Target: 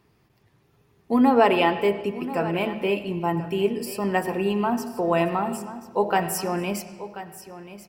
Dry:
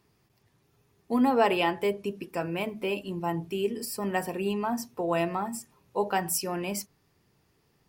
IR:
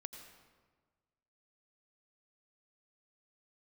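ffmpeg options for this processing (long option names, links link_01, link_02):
-filter_complex "[0:a]aecho=1:1:1035:0.188,asplit=2[link_01][link_02];[1:a]atrim=start_sample=2205,lowpass=4300[link_03];[link_02][link_03]afir=irnorm=-1:irlink=0,volume=3.5dB[link_04];[link_01][link_04]amix=inputs=2:normalize=0"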